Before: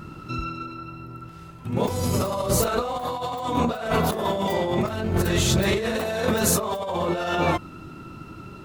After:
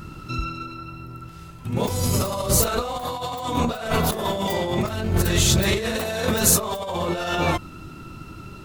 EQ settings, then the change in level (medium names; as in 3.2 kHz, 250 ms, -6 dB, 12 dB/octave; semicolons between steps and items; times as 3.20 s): bass shelf 83 Hz +10.5 dB; treble shelf 2.6 kHz +8 dB; -1.5 dB